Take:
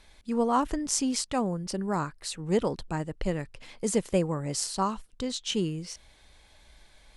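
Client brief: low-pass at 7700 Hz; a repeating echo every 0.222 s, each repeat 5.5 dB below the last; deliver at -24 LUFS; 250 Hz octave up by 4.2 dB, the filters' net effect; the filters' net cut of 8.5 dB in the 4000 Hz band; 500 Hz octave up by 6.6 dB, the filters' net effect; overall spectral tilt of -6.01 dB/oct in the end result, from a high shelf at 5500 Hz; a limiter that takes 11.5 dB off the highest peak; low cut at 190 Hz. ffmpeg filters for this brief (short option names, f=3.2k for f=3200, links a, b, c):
-af "highpass=190,lowpass=7.7k,equalizer=f=250:t=o:g=5.5,equalizer=f=500:t=o:g=6.5,equalizer=f=4k:t=o:g=-7.5,highshelf=f=5.5k:g=-8.5,alimiter=limit=-19dB:level=0:latency=1,aecho=1:1:222|444|666|888|1110|1332|1554:0.531|0.281|0.149|0.079|0.0419|0.0222|0.0118,volume=5.5dB"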